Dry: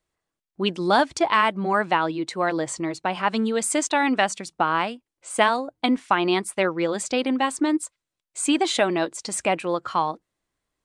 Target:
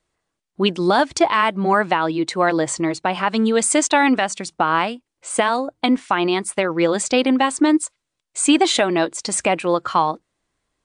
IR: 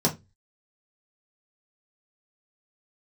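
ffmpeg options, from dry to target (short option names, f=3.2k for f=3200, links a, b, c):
-filter_complex "[0:a]asplit=3[a][b][c];[a]afade=t=out:st=6.26:d=0.02[d];[b]acompressor=threshold=-22dB:ratio=6,afade=t=in:st=6.26:d=0.02,afade=t=out:st=6.69:d=0.02[e];[c]afade=t=in:st=6.69:d=0.02[f];[d][e][f]amix=inputs=3:normalize=0,alimiter=limit=-12dB:level=0:latency=1:release=218,volume=6.5dB" -ar 22050 -c:a aac -b:a 96k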